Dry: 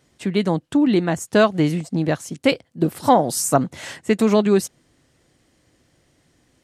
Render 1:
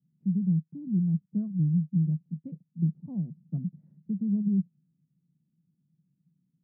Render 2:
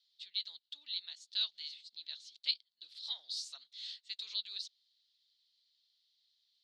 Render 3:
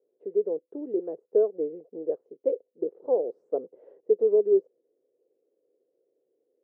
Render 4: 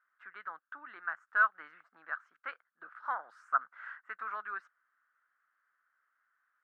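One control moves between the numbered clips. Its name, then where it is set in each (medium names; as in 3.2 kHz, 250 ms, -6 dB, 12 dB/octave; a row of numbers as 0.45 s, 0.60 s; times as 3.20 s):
Butterworth band-pass, frequency: 170 Hz, 4 kHz, 450 Hz, 1.4 kHz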